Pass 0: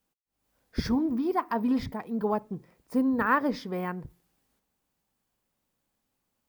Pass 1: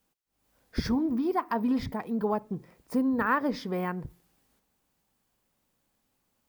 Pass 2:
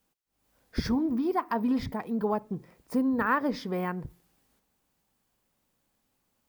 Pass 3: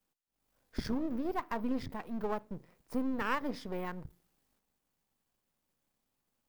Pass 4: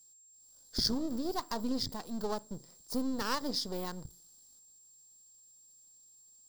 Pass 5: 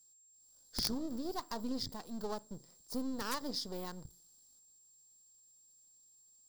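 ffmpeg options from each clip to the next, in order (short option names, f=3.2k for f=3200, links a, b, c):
-af "acompressor=threshold=-36dB:ratio=1.5,volume=4dB"
-af anull
-af "aeval=exprs='if(lt(val(0),0),0.251*val(0),val(0))':c=same,volume=-4dB"
-af "highshelf=f=3.3k:t=q:w=3:g=11.5,aeval=exprs='val(0)+0.00126*sin(2*PI*7500*n/s)':c=same"
-af "aeval=exprs='(mod(9.44*val(0)+1,2)-1)/9.44':c=same,volume=-4.5dB"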